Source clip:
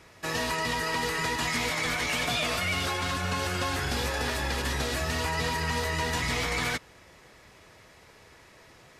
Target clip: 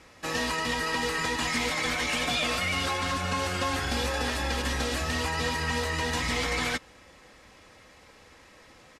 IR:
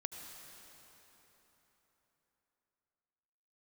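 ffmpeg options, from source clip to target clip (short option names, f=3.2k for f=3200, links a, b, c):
-af "lowpass=11k,aecho=1:1:3.8:0.42"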